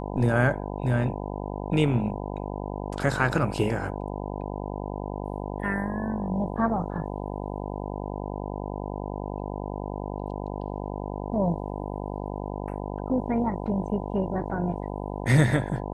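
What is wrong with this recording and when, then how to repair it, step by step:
buzz 50 Hz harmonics 20 -33 dBFS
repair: de-hum 50 Hz, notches 20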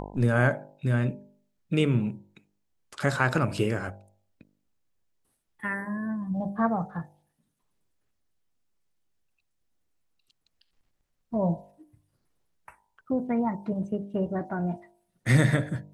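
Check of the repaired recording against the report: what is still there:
nothing left

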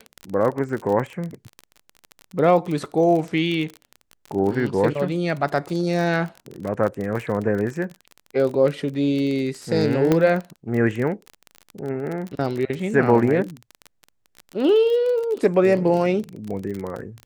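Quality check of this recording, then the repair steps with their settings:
crackle 28 per s -26 dBFS
10.12 s: pop -6 dBFS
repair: de-click

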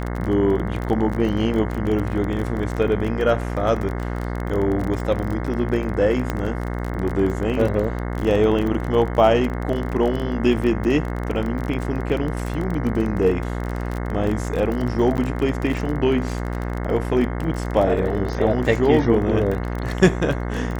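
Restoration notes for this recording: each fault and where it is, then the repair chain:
buzz 60 Hz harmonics 36 -26 dBFS
crackle 25 per s -25 dBFS
6.30 s: pop -10 dBFS
15.17–15.18 s: dropout 9.8 ms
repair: de-click; de-hum 60 Hz, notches 36; interpolate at 15.17 s, 9.8 ms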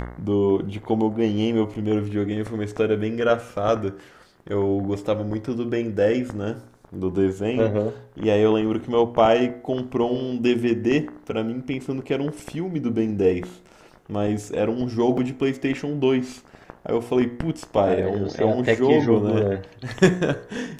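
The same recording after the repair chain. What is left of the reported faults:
nothing left

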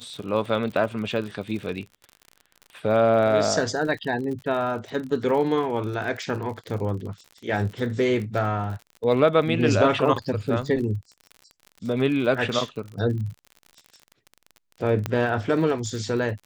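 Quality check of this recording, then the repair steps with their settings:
crackle 49 per s -33 dBFS
15.06 s: pop -12 dBFS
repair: de-click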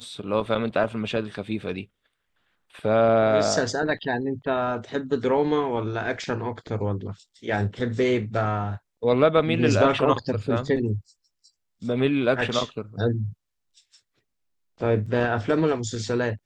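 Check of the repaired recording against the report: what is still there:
15.06 s: pop

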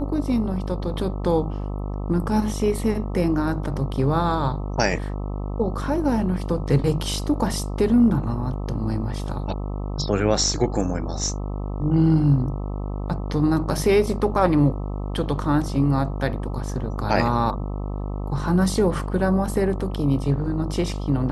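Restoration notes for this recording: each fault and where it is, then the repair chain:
buzz 50 Hz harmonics 26 -28 dBFS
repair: de-hum 50 Hz, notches 26

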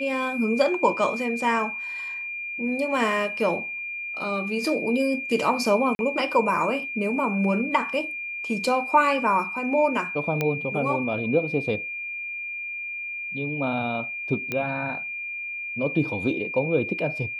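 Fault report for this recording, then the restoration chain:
whine 2.4 kHz -30 dBFS
5.95–5.99 s: dropout 41 ms
10.41 s: pop -11 dBFS
14.52 s: pop -14 dBFS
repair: de-click; band-stop 2.4 kHz, Q 30; interpolate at 5.95 s, 41 ms

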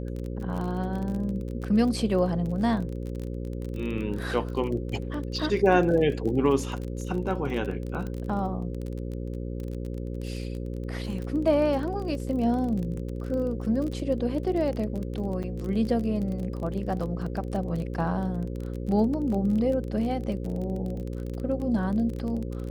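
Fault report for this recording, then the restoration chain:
buzz 60 Hz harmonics 9 -33 dBFS
crackle 27 per s -32 dBFS
15.43–15.44 s: dropout 6.7 ms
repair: de-click; de-hum 60 Hz, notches 9; interpolate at 15.43 s, 6.7 ms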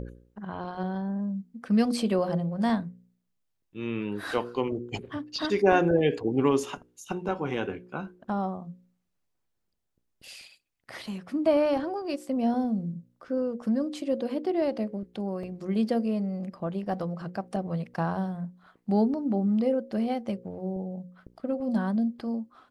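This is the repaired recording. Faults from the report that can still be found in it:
nothing left

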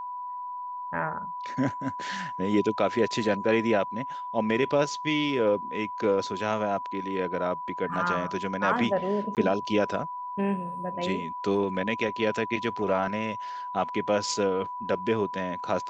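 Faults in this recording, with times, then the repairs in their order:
whine 990 Hz -33 dBFS
9.35–9.37 s: dropout 18 ms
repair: band-stop 990 Hz, Q 30; interpolate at 9.35 s, 18 ms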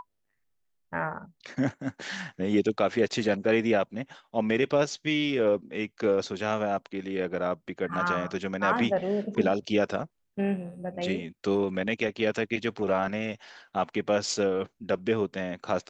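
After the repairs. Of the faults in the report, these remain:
nothing left

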